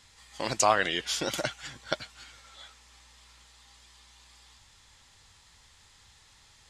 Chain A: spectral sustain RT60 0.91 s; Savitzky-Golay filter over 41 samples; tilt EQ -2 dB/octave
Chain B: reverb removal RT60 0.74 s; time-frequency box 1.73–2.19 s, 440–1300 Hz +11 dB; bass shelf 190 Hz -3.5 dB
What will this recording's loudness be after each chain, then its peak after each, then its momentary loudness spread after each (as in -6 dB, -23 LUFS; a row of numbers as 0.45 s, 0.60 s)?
-28.0 LUFS, -29.0 LUFS; -7.0 dBFS, -2.5 dBFS; 13 LU, 13 LU